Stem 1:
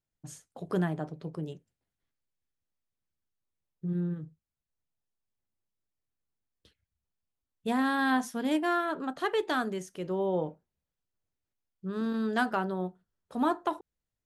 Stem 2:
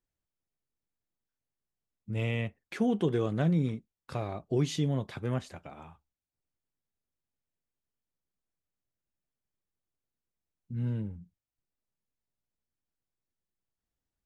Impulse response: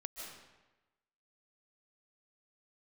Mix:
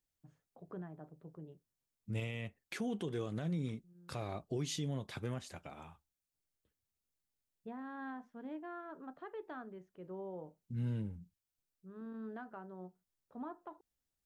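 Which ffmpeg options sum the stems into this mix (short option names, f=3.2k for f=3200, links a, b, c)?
-filter_complex "[0:a]lowpass=1.6k,alimiter=limit=-22.5dB:level=0:latency=1:release=410,volume=-14dB[a];[1:a]highshelf=f=3.3k:g=8.5,volume=-4dB,asplit=2[b][c];[c]apad=whole_len=628826[d];[a][d]sidechaincompress=threshold=-51dB:ratio=6:attack=39:release=987[e];[e][b]amix=inputs=2:normalize=0,alimiter=level_in=5.5dB:limit=-24dB:level=0:latency=1:release=194,volume=-5.5dB"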